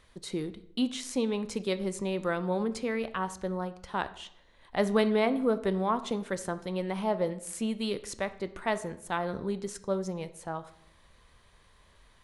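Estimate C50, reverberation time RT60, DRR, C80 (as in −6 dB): 15.5 dB, 0.70 s, 11.5 dB, 18.0 dB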